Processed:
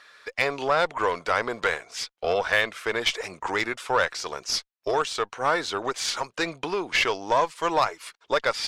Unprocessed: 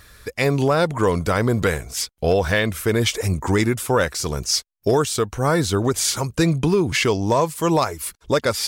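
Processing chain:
band-pass filter 670–4,100 Hz
harmonic generator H 6 −25 dB, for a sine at −8 dBFS

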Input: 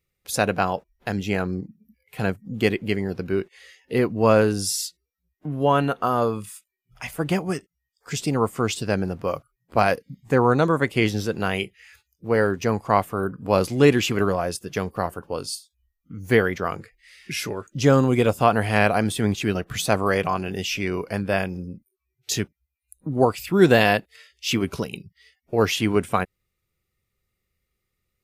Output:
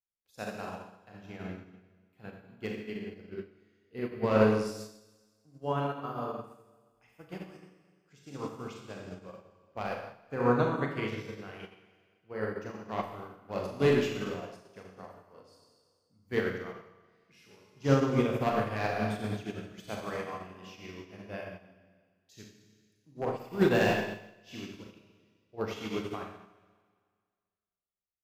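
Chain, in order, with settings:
wave folding −6.5 dBFS
parametric band 9,800 Hz −10 dB 0.77 octaves
four-comb reverb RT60 1.9 s, combs from 29 ms, DRR −3 dB
expander for the loud parts 2.5 to 1, over −26 dBFS
level −8.5 dB

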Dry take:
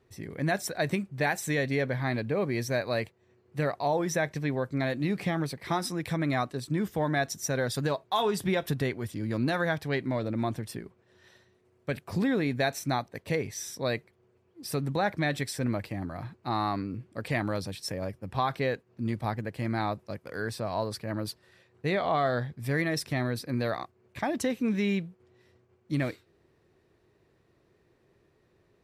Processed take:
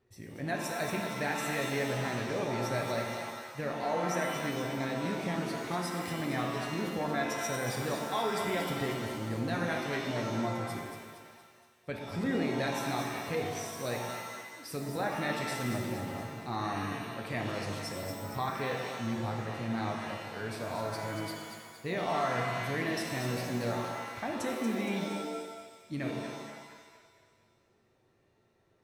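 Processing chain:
on a send: echo with a time of its own for lows and highs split 620 Hz, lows 118 ms, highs 233 ms, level −7.5 dB
on the sum: reverb with rising layers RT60 1.1 s, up +7 semitones, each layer −2 dB, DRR 2.5 dB
level −7.5 dB

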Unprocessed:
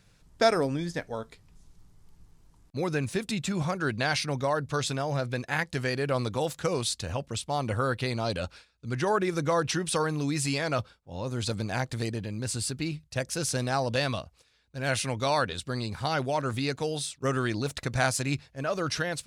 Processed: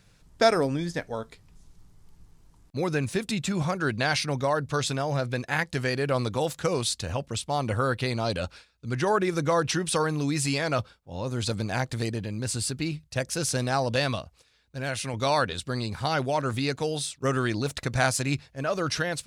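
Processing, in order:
0:14.15–0:15.14: downward compressor 2.5 to 1, threshold −31 dBFS, peak gain reduction 6 dB
level +2 dB

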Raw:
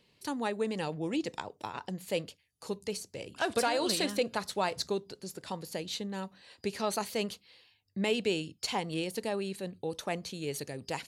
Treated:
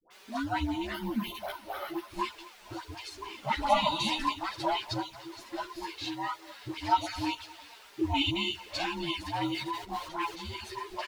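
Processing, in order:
frequency inversion band by band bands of 500 Hz
harmonic and percussive parts rebalanced harmonic +9 dB
bit-depth reduction 8 bits, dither triangular
repeating echo 224 ms, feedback 57%, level −20 dB
flanger swept by the level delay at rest 6.5 ms, full sweep at −21 dBFS
all-pass dispersion highs, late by 108 ms, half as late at 730 Hz
0:09.35–0:10.41: transient designer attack −10 dB, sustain +7 dB
three-way crossover with the lows and the highs turned down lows −17 dB, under 390 Hz, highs −15 dB, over 4,800 Hz
0:00.94–0:02.16: bad sample-rate conversion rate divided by 3×, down filtered, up hold
string-ensemble chorus
level +6 dB

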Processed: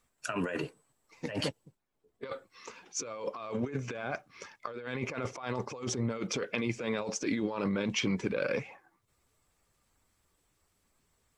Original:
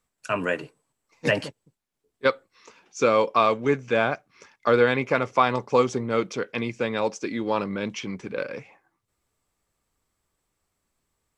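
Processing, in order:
spectral magnitudes quantised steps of 15 dB
compressor whose output falls as the input rises −32 dBFS, ratio −1
0:01.27–0:02.30: one half of a high-frequency compander decoder only
level −3 dB

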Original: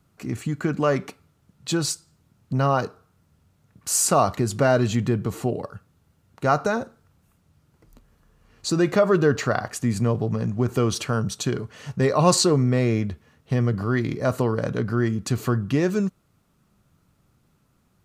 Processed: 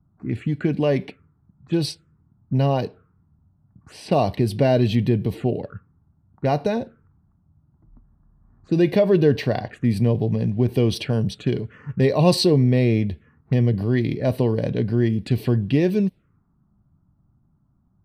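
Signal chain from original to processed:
phaser swept by the level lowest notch 470 Hz, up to 1,300 Hz, full sweep at −22.5 dBFS
low-pass that shuts in the quiet parts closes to 570 Hz, open at −21 dBFS
level +3.5 dB

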